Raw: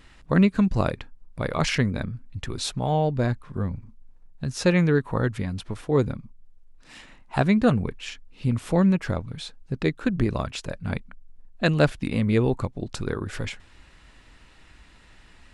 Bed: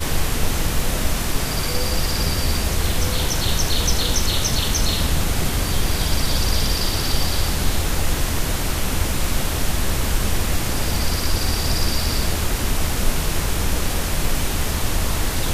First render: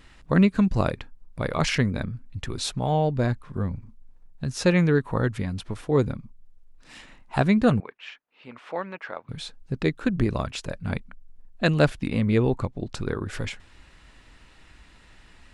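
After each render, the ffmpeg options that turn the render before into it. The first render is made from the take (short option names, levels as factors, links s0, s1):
-filter_complex "[0:a]asettb=1/sr,asplit=3[s0][s1][s2];[s0]atrim=end=7.804[s3];[s1]atrim=start=7.8:end=9.29,asetpts=PTS-STARTPTS,afade=t=in:d=0.004:c=qsin,afade=t=out:st=1.486:d=0.004:c=qsin,highpass=700,lowpass=2400[s4];[s2]atrim=start=9.286[s5];[s3][s4]acrossfade=d=0.004:c1=hsin:c2=qsin[s6];[s6][s5]acrossfade=d=0.004:c1=qsin:c2=hsin,asettb=1/sr,asplit=3[s7][s8][s9];[s7]atrim=end=12.014[s10];[s8]atrim=start=12.01:end=13.3,asetpts=PTS-STARTPTS,afade=t=in:d=0.004:c=qsin,afade=t=out:st=1.286:d=0.004:c=qsin,highshelf=f=7500:g=-7[s11];[s9]atrim=start=13.296[s12];[s10][s11]acrossfade=d=0.004:c1=hsin:c2=qsin[s13];[s13][s12]acrossfade=d=0.004:c1=qsin:c2=hsin"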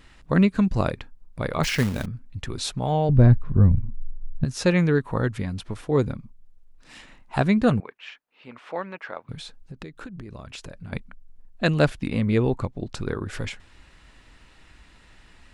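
-filter_complex "[0:a]asettb=1/sr,asplit=3[s0][s1][s2];[s0]atrim=end=1.634[s3];[s1]atrim=start=1.63:end=2.06,asetpts=PTS-STARTPTS,afade=t=in:d=0.004:c=qsin,afade=t=out:st=0.426:d=0.004:c=qsin,acrusher=bits=3:mode=log:mix=0:aa=0.000001[s4];[s2]atrim=start=2.056[s5];[s3][s4]acrossfade=d=0.004:c1=hsin:c2=qsin[s6];[s6][s5]acrossfade=d=0.004:c1=qsin:c2=hsin,asettb=1/sr,asplit=3[s7][s8][s9];[s7]atrim=end=3.094[s10];[s8]atrim=start=3.09:end=4.45,asetpts=PTS-STARTPTS,afade=t=in:d=0.004:c=qsin,afade=t=out:st=1.356:d=0.004:c=qsin,aemphasis=mode=reproduction:type=riaa[s11];[s9]atrim=start=4.446[s12];[s10][s11]acrossfade=d=0.004:c1=hsin:c2=qsin[s13];[s13][s12]acrossfade=d=0.004:c1=qsin:c2=hsin,asplit=3[s14][s15][s16];[s14]afade=t=out:st=9.34:d=0.02[s17];[s15]acompressor=threshold=0.02:ratio=20:attack=3.2:release=140:knee=1:detection=peak,afade=t=in:st=9.34:d=0.02,afade=t=out:st=10.92:d=0.02[s18];[s16]afade=t=in:st=10.92:d=0.02[s19];[s17][s18][s19]amix=inputs=3:normalize=0"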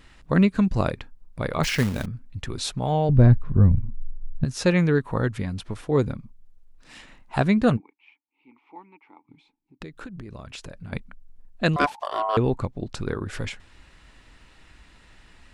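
-filter_complex "[0:a]asplit=3[s0][s1][s2];[s0]afade=t=out:st=7.76:d=0.02[s3];[s1]asplit=3[s4][s5][s6];[s4]bandpass=f=300:t=q:w=8,volume=1[s7];[s5]bandpass=f=870:t=q:w=8,volume=0.501[s8];[s6]bandpass=f=2240:t=q:w=8,volume=0.355[s9];[s7][s8][s9]amix=inputs=3:normalize=0,afade=t=in:st=7.76:d=0.02,afade=t=out:st=9.8:d=0.02[s10];[s2]afade=t=in:st=9.8:d=0.02[s11];[s3][s10][s11]amix=inputs=3:normalize=0,asettb=1/sr,asplit=3[s12][s13][s14];[s12]atrim=end=11.764[s15];[s13]atrim=start=11.76:end=12.37,asetpts=PTS-STARTPTS,afade=t=in:d=0.004:c=qsin,afade=t=out:st=0.606:d=0.004:c=qsin,aeval=exprs='val(0)*sin(2*PI*870*n/s)':c=same[s16];[s14]atrim=start=12.366[s17];[s15][s16]acrossfade=d=0.004:c1=hsin:c2=qsin[s18];[s18][s17]acrossfade=d=0.004:c1=qsin:c2=hsin"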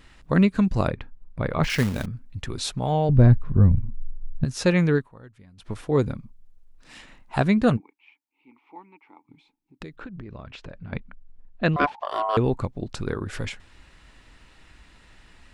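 -filter_complex "[0:a]asettb=1/sr,asplit=3[s0][s1][s2];[s0]atrim=end=0.874[s3];[s1]atrim=start=0.87:end=1.7,asetpts=PTS-STARTPTS,afade=t=in:d=0.004:c=qsin,afade=t=out:st=0.826:d=0.004:c=qsin,bass=f=250:g=3,treble=f=4000:g=-13[s4];[s2]atrim=start=1.696[s5];[s3][s4]acrossfade=d=0.004:c1=hsin:c2=qsin[s6];[s6][s5]acrossfade=d=0.004:c1=qsin:c2=hsin,asettb=1/sr,asplit=3[s7][s8][s9];[s7]atrim=end=9.964[s10];[s8]atrim=start=9.96:end=12.08,asetpts=PTS-STARTPTS,afade=t=in:d=0.004:c=qsin,afade=t=out:st=2.116:d=0.004:c=qsin,lowpass=3200[s11];[s9]atrim=start=12.076[s12];[s10][s11]acrossfade=d=0.004:c1=hsin:c2=qsin[s13];[s13][s12]acrossfade=d=0.004:c1=qsin:c2=hsin,asplit=3[s14][s15][s16];[s14]atrim=end=5.09,asetpts=PTS-STARTPTS,afade=t=out:st=4.95:d=0.14:silence=0.0794328[s17];[s15]atrim=start=5.09:end=5.57,asetpts=PTS-STARTPTS,volume=0.0794[s18];[s16]atrim=start=5.57,asetpts=PTS-STARTPTS,afade=t=in:d=0.14:silence=0.0794328[s19];[s17][s18][s19]concat=n=3:v=0:a=1"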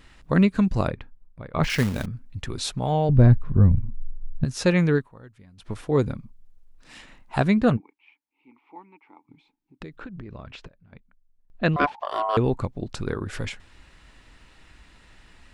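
-filter_complex "[0:a]asettb=1/sr,asplit=3[s0][s1][s2];[s0]atrim=end=7.604[s3];[s1]atrim=start=7.6:end=9.92,asetpts=PTS-STARTPTS,afade=t=in:d=0.004:c=qsin,afade=t=out:st=2.316:d=0.004:c=qsin,highshelf=f=5000:g=-7.5[s4];[s2]atrim=start=9.916[s5];[s3][s4]acrossfade=d=0.004:c1=hsin:c2=qsin[s6];[s6][s5]acrossfade=d=0.004:c1=qsin:c2=hsin,asplit=4[s7][s8][s9][s10];[s7]atrim=end=1.54,asetpts=PTS-STARTPTS,afade=t=out:st=0.74:d=0.8:silence=0.112202[s11];[s8]atrim=start=1.54:end=10.68,asetpts=PTS-STARTPTS,afade=t=in:d=0.004:c=hsin:silence=0.112202,afade=t=out:st=9.01:d=0.13:c=log:silence=0.141254[s12];[s9]atrim=start=10.68:end=11.5,asetpts=PTS-STARTPTS,volume=0.141[s13];[s10]atrim=start=11.5,asetpts=PTS-STARTPTS,afade=t=in:d=0.13:c=log:silence=0.141254[s14];[s11][s12][s13][s14]concat=n=4:v=0:a=1"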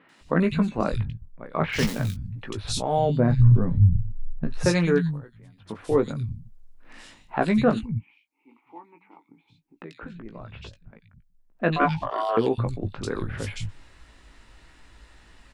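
-filter_complex "[0:a]asplit=2[s0][s1];[s1]adelay=18,volume=0.447[s2];[s0][s2]amix=inputs=2:normalize=0,acrossover=split=160|2600[s3][s4][s5];[s5]adelay=90[s6];[s3]adelay=210[s7];[s7][s4][s6]amix=inputs=3:normalize=0"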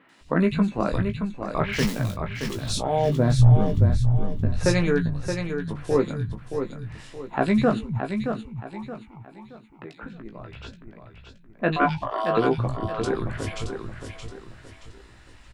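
-filter_complex "[0:a]asplit=2[s0][s1];[s1]adelay=15,volume=0.266[s2];[s0][s2]amix=inputs=2:normalize=0,aecho=1:1:623|1246|1869|2492:0.447|0.156|0.0547|0.0192"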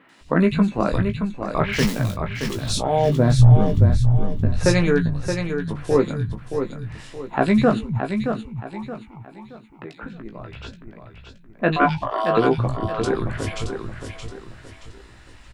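-af "volume=1.5,alimiter=limit=0.794:level=0:latency=1"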